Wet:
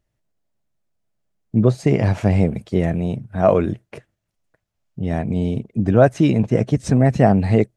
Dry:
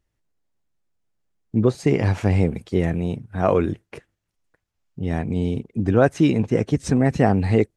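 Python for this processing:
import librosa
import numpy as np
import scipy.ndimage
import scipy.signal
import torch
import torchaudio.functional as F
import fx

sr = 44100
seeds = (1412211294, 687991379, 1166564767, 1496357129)

y = fx.graphic_eq_31(x, sr, hz=(125, 200, 630), db=(7, 5, 8))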